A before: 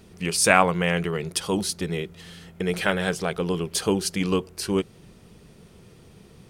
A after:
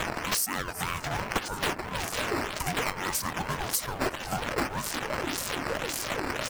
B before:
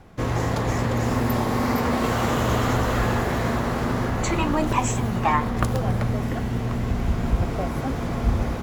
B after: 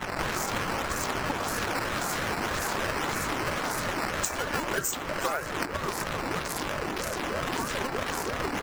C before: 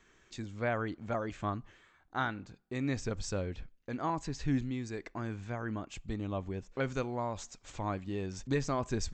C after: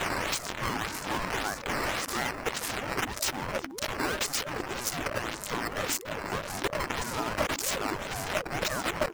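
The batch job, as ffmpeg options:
-filter_complex "[0:a]aeval=exprs='val(0)+0.5*0.0501*sgn(val(0))':channel_layout=same,aexciter=amount=15.6:drive=4.6:freq=4700,acrossover=split=450 2800:gain=0.0631 1 0.158[link_01][link_02][link_03];[link_01][link_02][link_03]amix=inputs=3:normalize=0,acrusher=samples=8:mix=1:aa=0.000001:lfo=1:lforange=12.8:lforate=1.8,asplit=2[link_04][link_05];[link_05]aecho=0:1:359:0.0841[link_06];[link_04][link_06]amix=inputs=2:normalize=0,acompressor=threshold=-27dB:ratio=12,bandreject=frequency=4100:width=21,afftdn=noise_reduction=16:noise_floor=-45,asplit=2[link_07][link_08];[link_08]acrusher=bits=2:mode=log:mix=0:aa=0.000001,volume=-4dB[link_09];[link_07][link_09]amix=inputs=2:normalize=0,asubboost=boost=4.5:cutoff=59,bandreject=frequency=60:width_type=h:width=6,bandreject=frequency=120:width_type=h:width=6,bandreject=frequency=180:width_type=h:width=6,aeval=exprs='val(0)*sin(2*PI*440*n/s+440*0.4/3.1*sin(2*PI*3.1*n/s))':channel_layout=same"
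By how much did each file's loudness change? −6.0, −6.0, +5.5 LU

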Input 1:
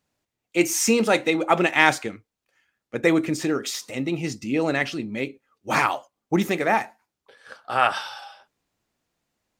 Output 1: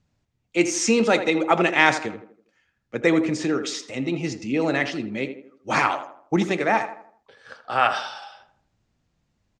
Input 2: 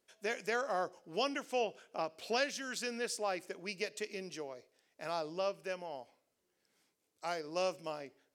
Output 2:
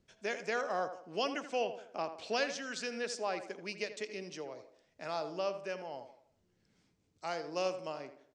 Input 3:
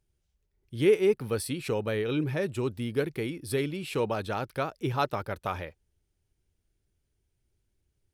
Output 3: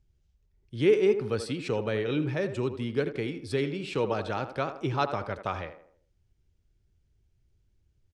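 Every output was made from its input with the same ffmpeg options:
-filter_complex "[0:a]lowpass=frequency=7400:width=0.5412,lowpass=frequency=7400:width=1.3066,acrossover=split=180[link_01][link_02];[link_01]acompressor=mode=upward:threshold=-58dB:ratio=2.5[link_03];[link_02]asplit=2[link_04][link_05];[link_05]adelay=81,lowpass=frequency=1700:poles=1,volume=-9dB,asplit=2[link_06][link_07];[link_07]adelay=81,lowpass=frequency=1700:poles=1,volume=0.45,asplit=2[link_08][link_09];[link_09]adelay=81,lowpass=frequency=1700:poles=1,volume=0.45,asplit=2[link_10][link_11];[link_11]adelay=81,lowpass=frequency=1700:poles=1,volume=0.45,asplit=2[link_12][link_13];[link_13]adelay=81,lowpass=frequency=1700:poles=1,volume=0.45[link_14];[link_04][link_06][link_08][link_10][link_12][link_14]amix=inputs=6:normalize=0[link_15];[link_03][link_15]amix=inputs=2:normalize=0"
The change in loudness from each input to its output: +0.5, +0.5, +0.5 LU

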